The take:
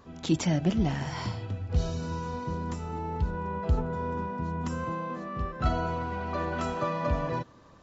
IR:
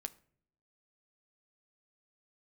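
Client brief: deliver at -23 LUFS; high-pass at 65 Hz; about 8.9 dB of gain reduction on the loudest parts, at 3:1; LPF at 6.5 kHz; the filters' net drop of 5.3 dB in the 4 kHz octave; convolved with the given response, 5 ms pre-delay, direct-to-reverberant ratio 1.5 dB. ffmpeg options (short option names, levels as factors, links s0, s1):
-filter_complex "[0:a]highpass=65,lowpass=6500,equalizer=f=4000:t=o:g=-6.5,acompressor=threshold=0.0224:ratio=3,asplit=2[s0][s1];[1:a]atrim=start_sample=2205,adelay=5[s2];[s1][s2]afir=irnorm=-1:irlink=0,volume=1.19[s3];[s0][s3]amix=inputs=2:normalize=0,volume=3.55"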